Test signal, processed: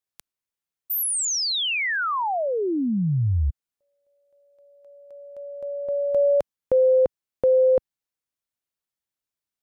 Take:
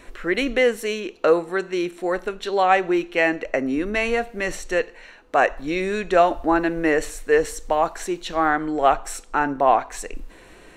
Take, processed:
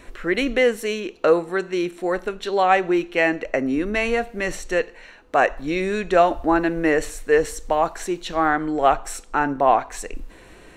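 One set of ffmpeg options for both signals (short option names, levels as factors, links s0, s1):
-af "equalizer=f=85:w=0.51:g=4"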